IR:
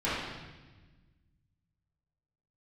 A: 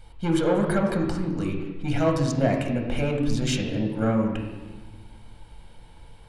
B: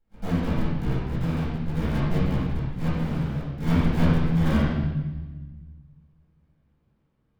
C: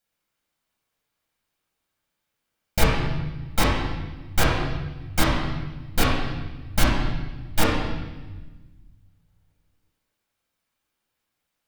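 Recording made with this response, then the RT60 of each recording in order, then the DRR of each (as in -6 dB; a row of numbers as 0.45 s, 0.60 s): B; 1.3 s, 1.2 s, 1.2 s; 1.5 dB, -12.0 dB, -6.0 dB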